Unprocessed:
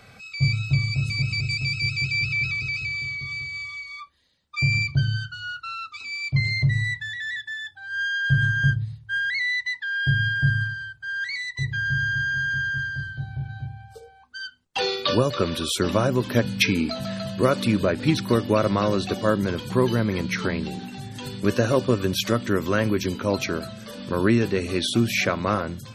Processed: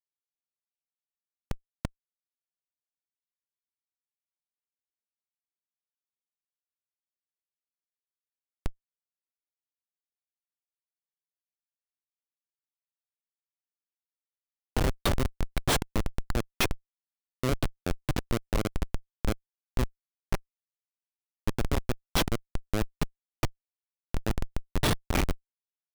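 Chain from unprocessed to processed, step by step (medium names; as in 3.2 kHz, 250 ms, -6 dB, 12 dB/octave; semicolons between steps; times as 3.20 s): fade out at the end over 0.91 s; RIAA curve recording; Schmitt trigger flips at -13.5 dBFS; trim +2 dB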